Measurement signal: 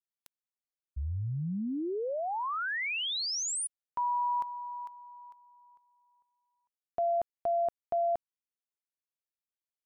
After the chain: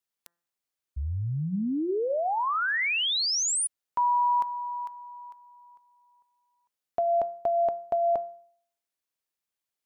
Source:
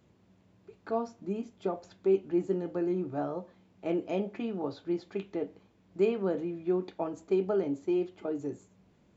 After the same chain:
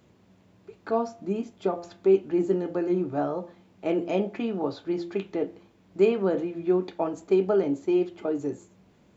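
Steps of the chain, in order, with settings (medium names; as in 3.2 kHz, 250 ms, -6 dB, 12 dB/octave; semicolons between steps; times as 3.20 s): bass shelf 160 Hz -4 dB; de-hum 171.8 Hz, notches 11; trim +6.5 dB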